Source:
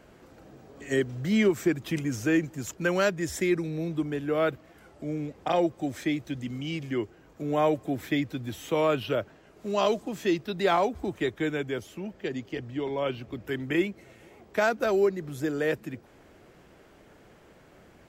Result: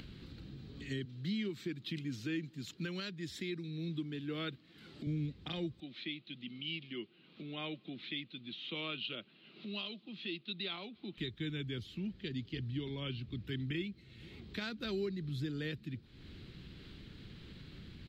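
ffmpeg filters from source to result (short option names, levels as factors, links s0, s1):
-filter_complex "[0:a]asettb=1/sr,asplit=3[s0][s1][s2];[s0]atrim=end=1.054[s3];[s1]atrim=start=1.05:end=5.07,asetpts=PTS-STARTPTS,afade=t=in:d=0.004:c=qsin,afade=t=out:st=4.016:d=0.004:c=qsin,highpass=200[s4];[s2]atrim=start=5.066[s5];[s3][s4]acrossfade=d=0.004:c1=hsin:c2=qsin[s6];[s6][s5]acrossfade=d=0.004:c1=qsin:c2=hsin,asettb=1/sr,asplit=3[s7][s8][s9];[s7]atrim=end=5.804[s10];[s8]atrim=start=5.8:end=11.18,asetpts=PTS-STARTPTS,afade=t=in:d=0.004:c=qsin,afade=t=out:st=5.376:d=0.004:c=qsin,highpass=f=230:w=0.5412,highpass=f=230:w=1.3066,equalizer=f=280:t=q:w=4:g=-10,equalizer=f=440:t=q:w=4:g=-7,equalizer=f=940:t=q:w=4:g=-4,equalizer=f=1700:t=q:w=4:g=-8,equalizer=f=2700:t=q:w=4:g=4,lowpass=f=3800:w=0.5412,lowpass=f=3800:w=1.3066[s11];[s9]atrim=start=11.176[s12];[s10][s11]acrossfade=d=0.004:c1=hsin:c2=qsin[s13];[s13][s12]acrossfade=d=0.004:c1=qsin:c2=hsin,firequalizer=gain_entry='entry(140,0);entry(630,-26);entry(1200,-16);entry(4000,5);entry(5900,-16);entry(9600,-19)':delay=0.05:min_phase=1,acompressor=mode=upward:threshold=0.00631:ratio=2.5,alimiter=level_in=2.24:limit=0.0631:level=0:latency=1:release=494,volume=0.447,volume=1.26"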